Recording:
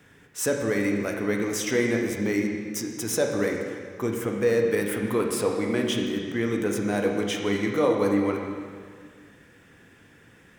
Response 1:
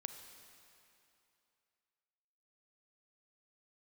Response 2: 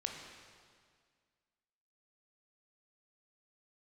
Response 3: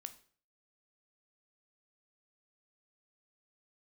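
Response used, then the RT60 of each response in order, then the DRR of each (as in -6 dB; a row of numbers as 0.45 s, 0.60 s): 2; 2.8 s, 1.9 s, 0.45 s; 7.0 dB, 1.5 dB, 9.5 dB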